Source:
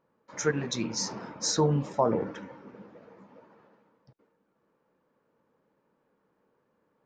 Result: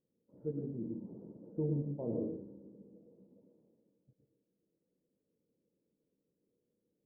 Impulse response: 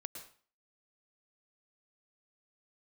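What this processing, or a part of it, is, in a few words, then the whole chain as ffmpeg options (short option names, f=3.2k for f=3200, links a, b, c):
next room: -filter_complex "[0:a]lowpass=f=450:w=0.5412,lowpass=f=450:w=1.3066[a];[1:a]atrim=start_sample=2205[b];[a][b]afir=irnorm=-1:irlink=0,asettb=1/sr,asplit=3[c][d][e];[c]atrim=end=1.994[f];[d]atrim=start=1.99:end=2.76,asetpts=PTS-STARTPTS,afade=t=in:d=0.004:c=qsin,afade=t=out:st=0.766:d=0.004:c=qsin,asplit=2[g][h];[h]adelay=34,volume=-5dB[i];[g][i]amix=inputs=2:normalize=0,atrim=end_sample=33957[j];[e]atrim=start=2.756[k];[f][j]acrossfade=d=0.004:c1=hsin:c2=qsin[l];[l][k]acrossfade=d=0.004:c1=qsin:c2=hsin,volume=-4.5dB"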